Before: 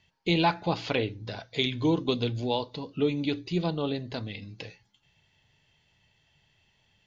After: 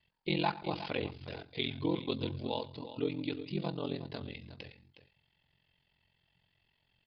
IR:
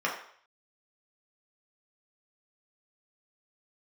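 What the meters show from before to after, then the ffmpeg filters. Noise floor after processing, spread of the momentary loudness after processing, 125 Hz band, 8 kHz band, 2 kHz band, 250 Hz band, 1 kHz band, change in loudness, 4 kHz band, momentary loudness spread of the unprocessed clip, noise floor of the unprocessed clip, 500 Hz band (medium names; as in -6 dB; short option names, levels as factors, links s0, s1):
-77 dBFS, 13 LU, -8.0 dB, no reading, -7.5 dB, -7.5 dB, -7.5 dB, -7.5 dB, -7.5 dB, 14 LU, -69 dBFS, -7.5 dB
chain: -af "aecho=1:1:108|363:0.106|0.224,aeval=exprs='val(0)*sin(2*PI*22*n/s)':c=same,aresample=11025,aresample=44100,volume=0.562"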